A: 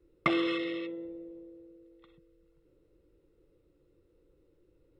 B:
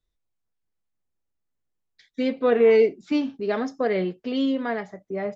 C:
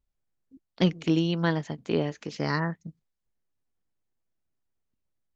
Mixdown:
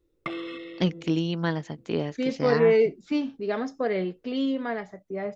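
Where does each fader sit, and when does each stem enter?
-6.0, -3.0, -1.5 dB; 0.00, 0.00, 0.00 s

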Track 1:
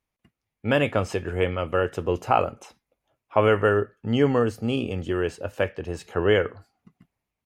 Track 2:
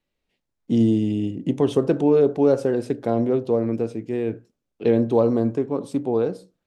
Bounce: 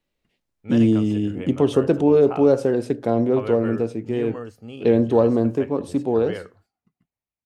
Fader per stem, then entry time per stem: -12.5, +1.5 dB; 0.00, 0.00 s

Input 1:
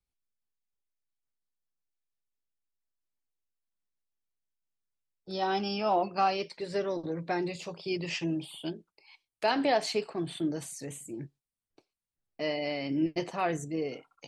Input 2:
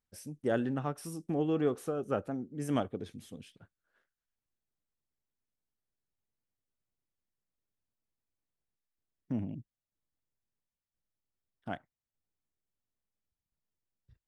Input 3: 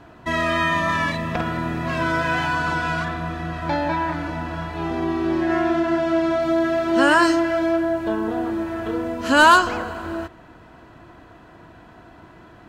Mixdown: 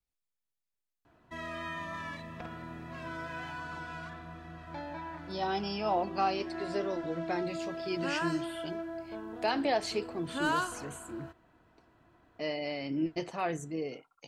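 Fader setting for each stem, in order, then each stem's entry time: -3.0 dB, off, -18.5 dB; 0.00 s, off, 1.05 s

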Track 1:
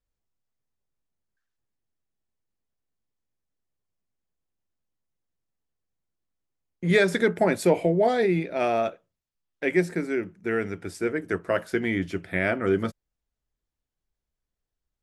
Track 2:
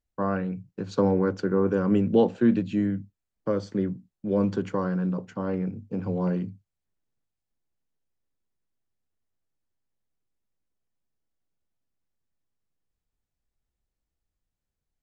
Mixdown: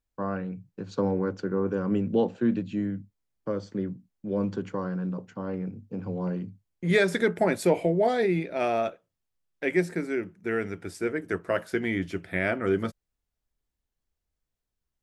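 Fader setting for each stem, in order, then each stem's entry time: -2.0, -4.0 dB; 0.00, 0.00 s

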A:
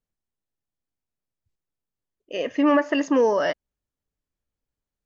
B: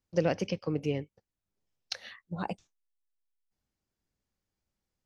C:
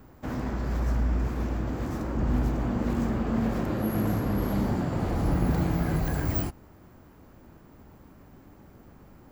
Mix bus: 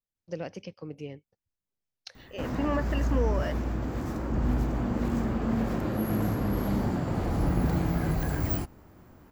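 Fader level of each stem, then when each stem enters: -11.0, -8.5, -1.0 dB; 0.00, 0.15, 2.15 s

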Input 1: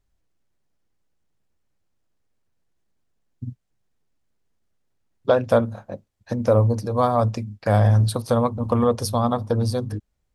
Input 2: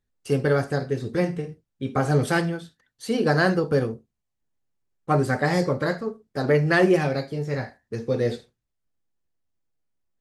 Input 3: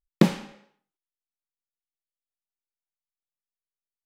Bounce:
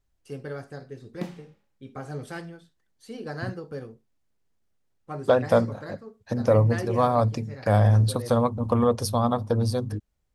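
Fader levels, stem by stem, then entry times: -2.0, -14.5, -17.0 dB; 0.00, 0.00, 1.00 s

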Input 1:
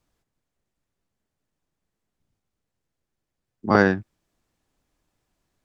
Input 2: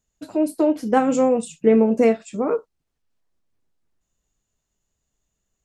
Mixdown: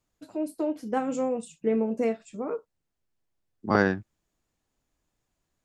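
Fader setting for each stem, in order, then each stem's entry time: -5.0, -10.0 dB; 0.00, 0.00 s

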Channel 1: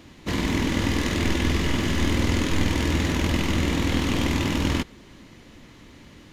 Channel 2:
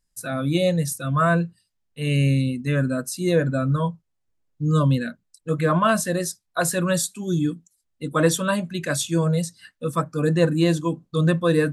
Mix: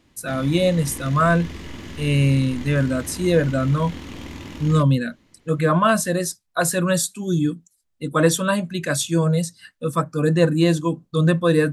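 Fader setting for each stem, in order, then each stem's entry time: -12.0, +2.0 dB; 0.00, 0.00 s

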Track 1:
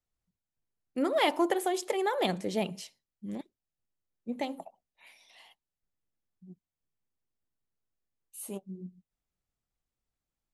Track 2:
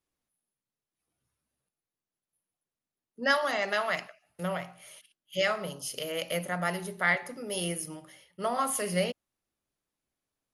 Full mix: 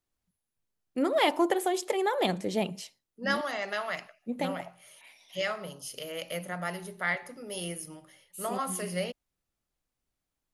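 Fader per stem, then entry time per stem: +1.5, -4.0 dB; 0.00, 0.00 s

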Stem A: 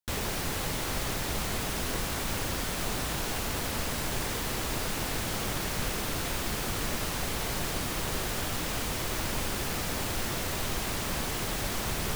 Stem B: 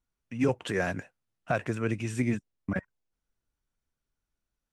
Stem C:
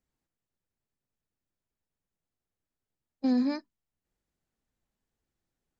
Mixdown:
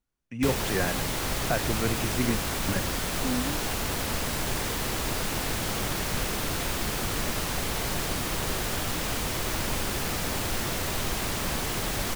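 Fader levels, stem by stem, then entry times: +2.5, 0.0, -6.5 dB; 0.35, 0.00, 0.00 s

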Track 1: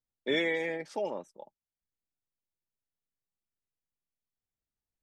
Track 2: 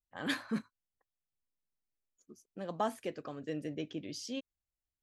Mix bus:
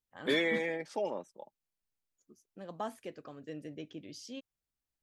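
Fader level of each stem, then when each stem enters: -1.0, -5.0 dB; 0.00, 0.00 s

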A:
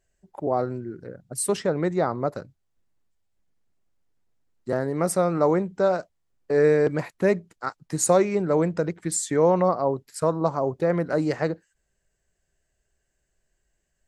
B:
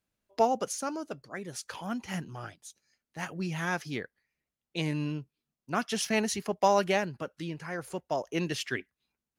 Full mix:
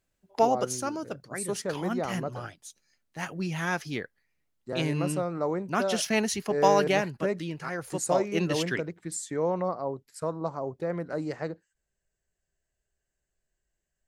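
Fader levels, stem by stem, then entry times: -8.5, +2.0 dB; 0.00, 0.00 s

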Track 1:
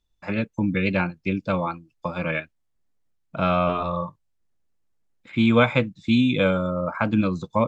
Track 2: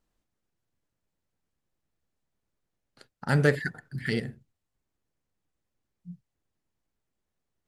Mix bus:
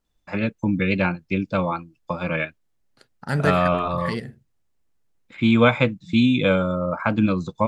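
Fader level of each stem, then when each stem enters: +1.5, 0.0 dB; 0.05, 0.00 s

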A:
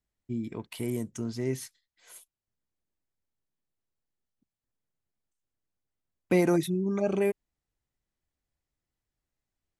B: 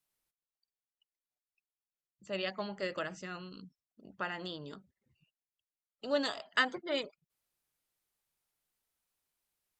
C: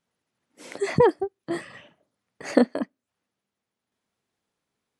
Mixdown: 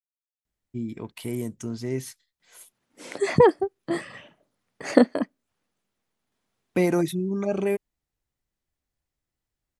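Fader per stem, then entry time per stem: +1.5 dB, off, +2.0 dB; 0.45 s, off, 2.40 s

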